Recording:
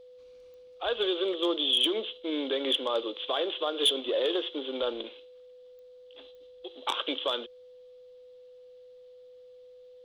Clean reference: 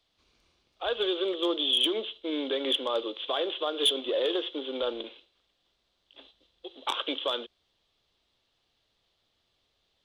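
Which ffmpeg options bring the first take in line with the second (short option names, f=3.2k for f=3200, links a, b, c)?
-af "adeclick=t=4,bandreject=f=500:w=30"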